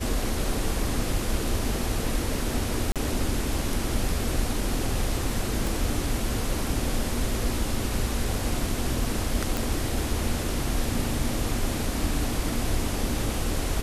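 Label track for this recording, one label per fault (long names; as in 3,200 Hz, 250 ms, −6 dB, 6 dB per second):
2.920000	2.960000	drop-out 37 ms
5.670000	5.670000	click
9.570000	9.570000	click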